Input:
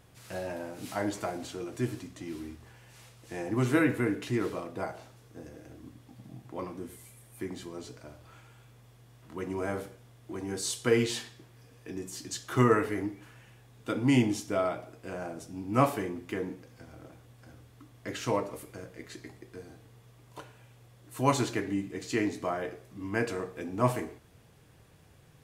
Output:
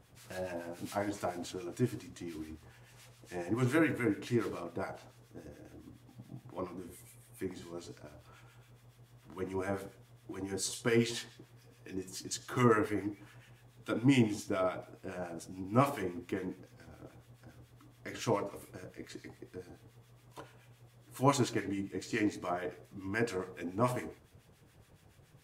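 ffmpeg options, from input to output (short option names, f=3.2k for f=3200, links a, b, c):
-filter_complex "[0:a]acrossover=split=1200[a][b];[a]aeval=exprs='val(0)*(1-0.7/2+0.7/2*cos(2*PI*7.1*n/s))':c=same[c];[b]aeval=exprs='val(0)*(1-0.7/2-0.7/2*cos(2*PI*7.1*n/s))':c=same[d];[c][d]amix=inputs=2:normalize=0"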